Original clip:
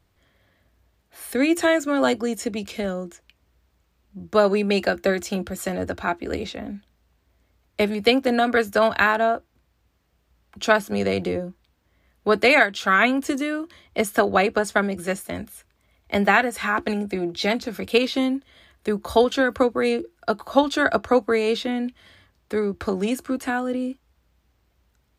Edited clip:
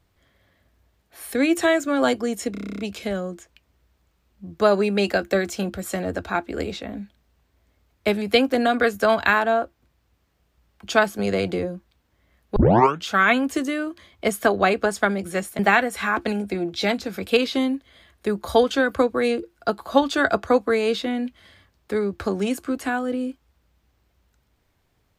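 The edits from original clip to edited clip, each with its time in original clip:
0:02.52: stutter 0.03 s, 10 plays
0:12.29: tape start 0.49 s
0:15.32–0:16.20: remove

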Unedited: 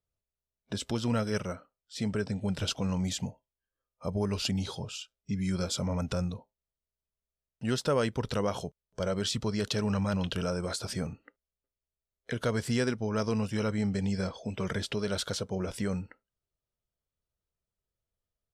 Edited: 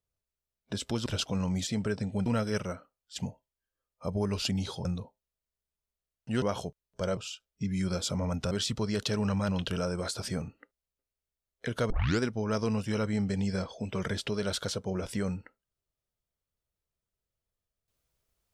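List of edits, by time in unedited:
0:01.06–0:01.96: swap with 0:02.55–0:03.16
0:04.85–0:06.19: move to 0:09.16
0:07.76–0:08.41: remove
0:12.55: tape start 0.30 s

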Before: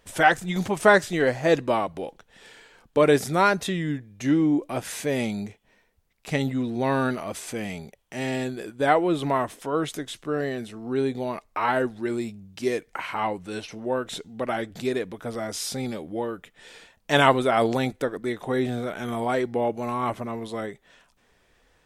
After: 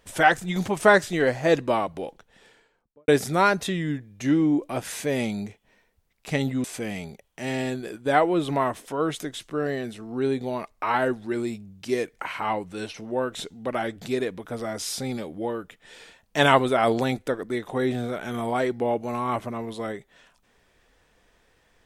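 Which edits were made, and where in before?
0:02.05–0:03.08: fade out and dull
0:06.64–0:07.38: remove

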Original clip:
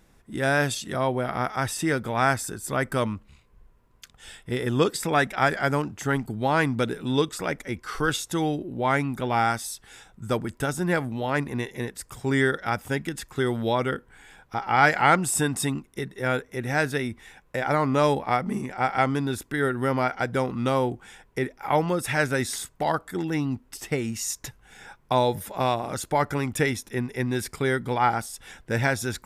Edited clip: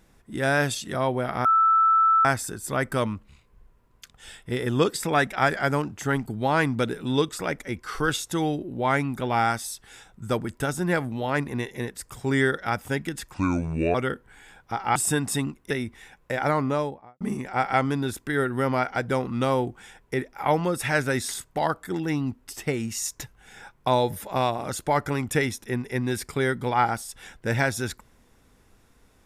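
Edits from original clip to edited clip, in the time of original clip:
0:01.45–0:02.25: beep over 1,320 Hz −15.5 dBFS
0:13.34–0:13.77: play speed 71%
0:14.78–0:15.24: remove
0:15.99–0:16.95: remove
0:17.70–0:18.45: fade out and dull

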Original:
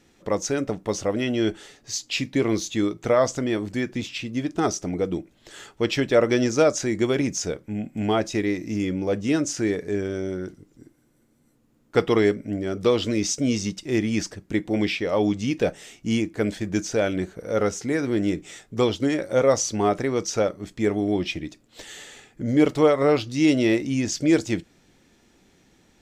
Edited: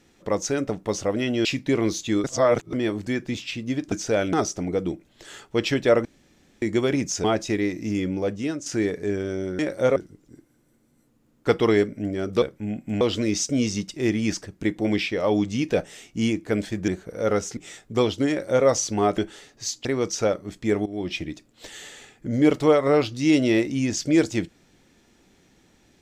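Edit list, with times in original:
0:01.45–0:02.12: move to 0:20.00
0:02.91–0:03.40: reverse
0:06.31–0:06.88: fill with room tone
0:07.50–0:08.09: move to 0:12.90
0:09.00–0:09.51: fade out, to −11 dB
0:16.77–0:17.18: move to 0:04.59
0:17.87–0:18.39: remove
0:19.11–0:19.48: duplicate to 0:10.44
0:21.01–0:21.34: fade in, from −17 dB

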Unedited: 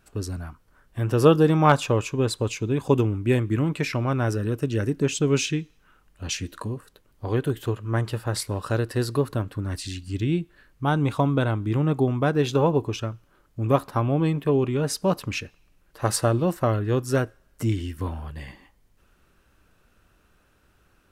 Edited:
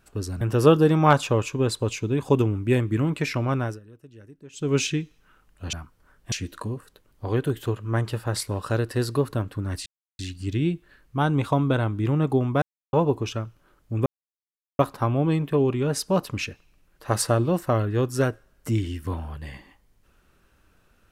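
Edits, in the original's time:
0:00.41–0:01.00: move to 0:06.32
0:04.15–0:05.35: duck −22.5 dB, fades 0.24 s
0:09.86: splice in silence 0.33 s
0:12.29–0:12.60: silence
0:13.73: splice in silence 0.73 s

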